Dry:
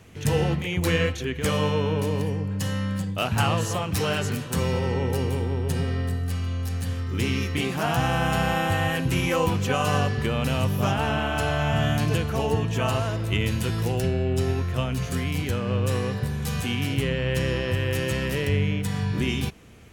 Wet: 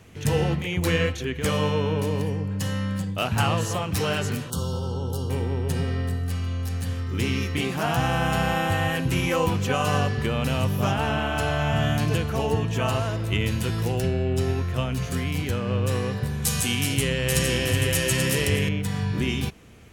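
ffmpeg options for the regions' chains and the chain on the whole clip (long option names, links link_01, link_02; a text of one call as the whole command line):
ffmpeg -i in.wav -filter_complex "[0:a]asettb=1/sr,asplit=3[link_01][link_02][link_03];[link_01]atrim=end=4.504[link_04];[link_02]atrim=start=4.5:end=5.3,asetpts=PTS-STARTPTS,afade=type=in:duration=0.004:curve=qsin,afade=type=out:start_time=0.796:duration=0.004:curve=qsin,asuperstop=centerf=2100:order=12:qfactor=1.4,equalizer=frequency=460:width=0.34:gain=-6.5[link_05];[link_03]atrim=start=5.296[link_06];[link_04][link_05]acrossfade=duration=0.004:curve1=hsin:curve2=qsin[link_07];[link_07][link_06]acrossfade=duration=0.004:curve1=qsin:curve2=hsin,asettb=1/sr,asplit=3[link_08][link_09][link_10];[link_08]atrim=end=16.444[link_11];[link_09]atrim=start=16.44:end=18.69,asetpts=PTS-STARTPTS,afade=type=in:duration=0.004:curve=qsin,afade=type=out:start_time=2.246:duration=0.004:curve=qsin,equalizer=frequency=9200:width=0.5:gain=14.5,aecho=1:1:835:0.562,atrim=end_sample=99225[link_12];[link_10]atrim=start=18.686[link_13];[link_11][link_12]acrossfade=duration=0.004:curve1=hsin:curve2=qsin[link_14];[link_14][link_13]acrossfade=duration=0.004:curve1=qsin:curve2=hsin" out.wav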